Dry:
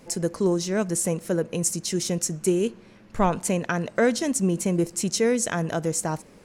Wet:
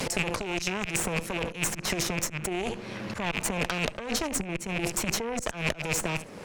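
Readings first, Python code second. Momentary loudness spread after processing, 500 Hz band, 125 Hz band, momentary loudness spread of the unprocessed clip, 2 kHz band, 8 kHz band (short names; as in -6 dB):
4 LU, -8.5 dB, -6.5 dB, 4 LU, +2.5 dB, -4.0 dB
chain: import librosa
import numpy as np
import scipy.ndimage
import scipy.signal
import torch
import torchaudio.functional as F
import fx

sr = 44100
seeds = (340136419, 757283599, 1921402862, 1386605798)

p1 = fx.rattle_buzz(x, sr, strikes_db=-33.0, level_db=-22.0)
p2 = scipy.signal.sosfilt(scipy.signal.butter(4, 87.0, 'highpass', fs=sr, output='sos'), p1)
p3 = fx.high_shelf(p2, sr, hz=3500.0, db=-12.0)
p4 = p3 + fx.echo_single(p3, sr, ms=72, db=-20.0, dry=0)
p5 = fx.over_compress(p4, sr, threshold_db=-30.0, ratio=-1.0)
p6 = fx.auto_swell(p5, sr, attack_ms=184.0)
p7 = fx.vibrato(p6, sr, rate_hz=0.83, depth_cents=29.0)
p8 = fx.cheby_harmonics(p7, sr, harmonics=(3, 5, 8), levels_db=(-13, -27, -21), full_scale_db=-14.0)
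p9 = fx.peak_eq(p8, sr, hz=230.0, db=-4.5, octaves=1.9)
p10 = fx.band_squash(p9, sr, depth_pct=100)
y = F.gain(torch.from_numpy(p10), 7.0).numpy()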